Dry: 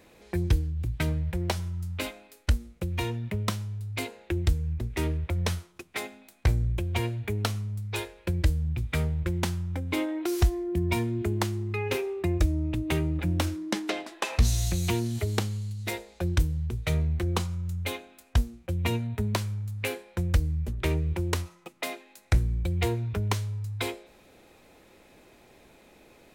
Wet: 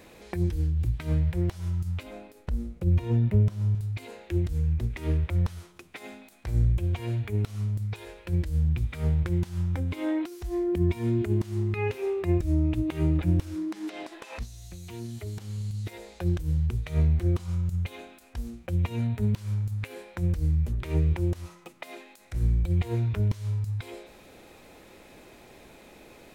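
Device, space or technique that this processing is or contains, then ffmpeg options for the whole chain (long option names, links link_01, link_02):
de-esser from a sidechain: -filter_complex "[0:a]asplit=2[link_01][link_02];[link_02]highpass=frequency=4100:width=0.5412,highpass=frequency=4100:width=1.3066,apad=whole_len=1161744[link_03];[link_01][link_03]sidechaincompress=threshold=-58dB:ratio=12:attack=4.5:release=43,asettb=1/sr,asplit=3[link_04][link_05][link_06];[link_04]atrim=end=2.034[link_07];[link_05]atrim=start=2.03:end=3.75,asetpts=PTS-STARTPTS,afade=type=in:duration=0.004:curve=qsin,afade=type=out:start_time=1.716:duration=0.004:curve=qsin,tiltshelf=frequency=970:gain=6[link_08];[link_06]atrim=start=3.746[link_09];[link_07][link_08]acrossfade=duration=0.004:curve1=hsin:curve2=qsin[link_10];[link_10][link_09]acrossfade=duration=0.004:curve1=qsin:curve2=hsin,volume=5dB"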